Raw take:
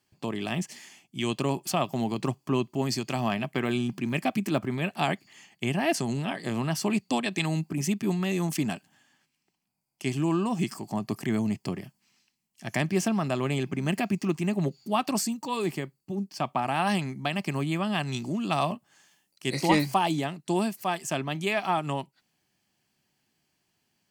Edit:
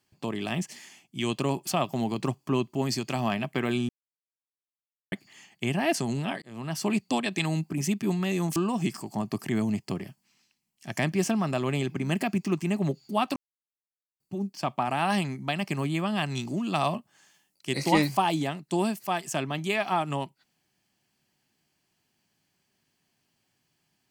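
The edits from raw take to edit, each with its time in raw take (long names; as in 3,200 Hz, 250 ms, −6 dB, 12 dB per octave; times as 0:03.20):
0:03.89–0:05.12: silence
0:06.42–0:06.88: fade in
0:08.56–0:10.33: remove
0:15.13–0:15.97: silence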